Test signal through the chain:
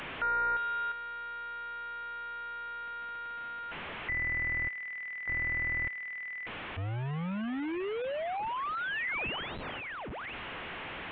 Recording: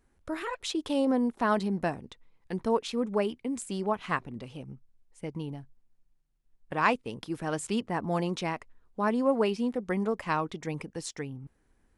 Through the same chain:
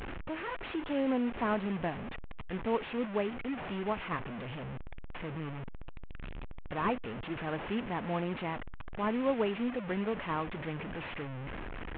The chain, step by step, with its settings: one-bit delta coder 16 kbps, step -29.5 dBFS; trim -4.5 dB

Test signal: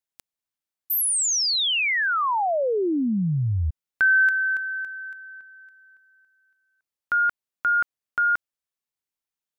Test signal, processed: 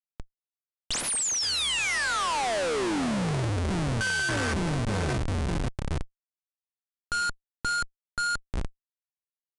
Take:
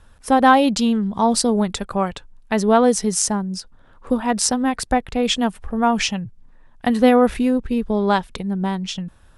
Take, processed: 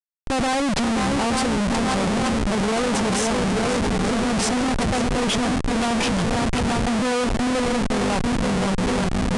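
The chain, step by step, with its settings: shuffle delay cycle 876 ms, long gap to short 1.5:1, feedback 64%, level -7 dB; Schmitt trigger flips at -22 dBFS; resampled via 22.05 kHz; trim -3 dB

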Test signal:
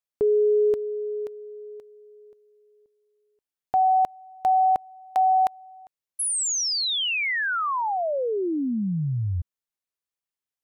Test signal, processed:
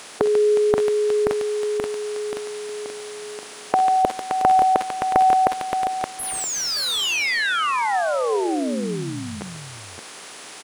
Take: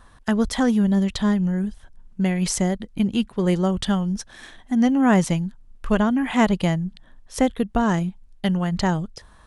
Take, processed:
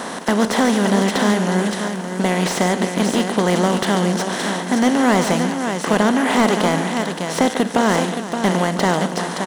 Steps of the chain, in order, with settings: spectral levelling over time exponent 0.4; high-pass 230 Hz 12 dB/octave; bit crusher 10-bit; on a send: multi-tap echo 49/62/143/363/571 ms -18/-18.5/-12/-14.5/-7.5 dB; on the sum: slew-rate limiter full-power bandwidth 330 Hz; trim +1 dB

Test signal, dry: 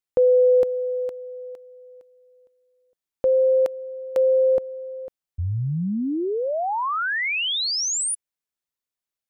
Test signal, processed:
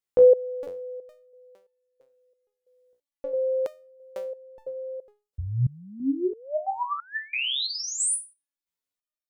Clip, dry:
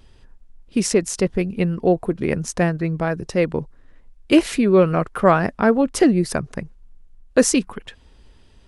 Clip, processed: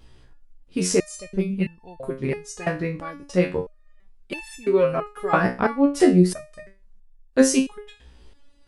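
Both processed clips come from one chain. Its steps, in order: resonator arpeggio 3 Hz 62–890 Hz; trim +7.5 dB

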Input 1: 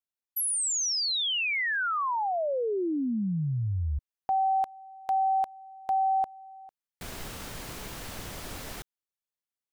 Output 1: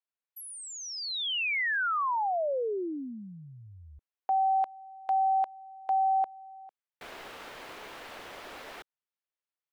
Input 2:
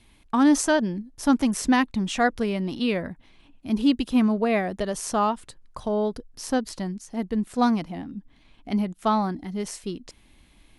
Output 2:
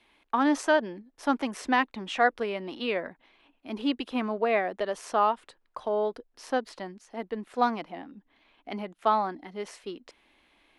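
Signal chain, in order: three-band isolator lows -21 dB, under 330 Hz, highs -15 dB, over 3.7 kHz

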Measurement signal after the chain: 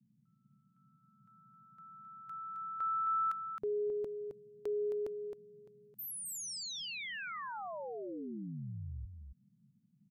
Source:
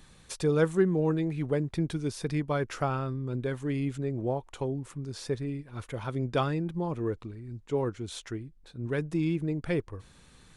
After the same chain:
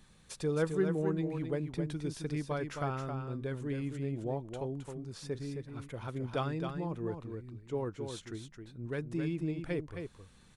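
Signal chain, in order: band noise 120–220 Hz -64 dBFS; delay 266 ms -6.5 dB; trim -6.5 dB

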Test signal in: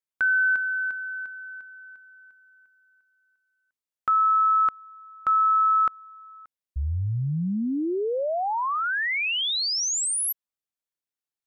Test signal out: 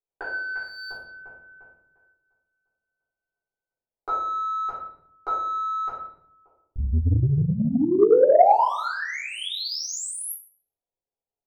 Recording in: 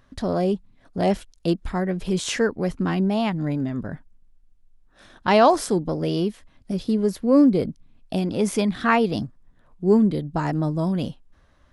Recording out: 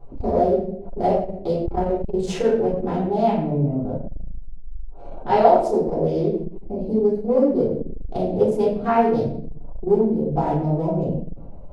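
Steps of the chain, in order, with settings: local Wiener filter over 25 samples; compression 3:1, threshold -40 dBFS; high-order bell 620 Hz +10.5 dB; gate with hold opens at -51 dBFS, closes at -55 dBFS, hold 37 ms, range -11 dB; bass shelf 310 Hz +5.5 dB; band-stop 1.1 kHz, Q 6.2; simulated room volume 140 m³, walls mixed, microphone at 3.5 m; transformer saturation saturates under 260 Hz; trim -2 dB

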